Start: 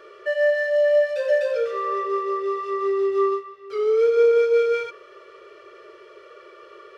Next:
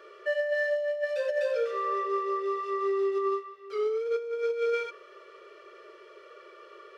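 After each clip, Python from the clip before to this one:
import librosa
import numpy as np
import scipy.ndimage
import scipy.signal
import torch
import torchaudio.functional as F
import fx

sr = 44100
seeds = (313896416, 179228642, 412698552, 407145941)

y = fx.over_compress(x, sr, threshold_db=-20.0, ratio=-0.5)
y = fx.low_shelf(y, sr, hz=180.0, db=-9.5)
y = y * librosa.db_to_amplitude(-5.5)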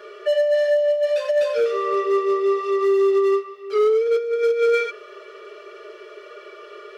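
y = x + 0.84 * np.pad(x, (int(4.8 * sr / 1000.0), 0))[:len(x)]
y = np.clip(10.0 ** (22.0 / 20.0) * y, -1.0, 1.0) / 10.0 ** (22.0 / 20.0)
y = y * librosa.db_to_amplitude(7.5)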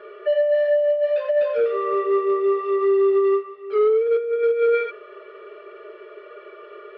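y = scipy.ndimage.gaussian_filter1d(x, 3.0, mode='constant')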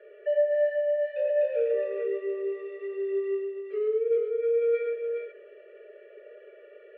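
y = fx.vowel_filter(x, sr, vowel='e')
y = fx.echo_multitap(y, sr, ms=(108, 414), db=(-6.0, -6.0))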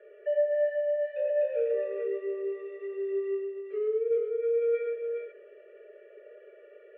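y = fx.air_absorb(x, sr, metres=210.0)
y = y * librosa.db_to_amplitude(-1.5)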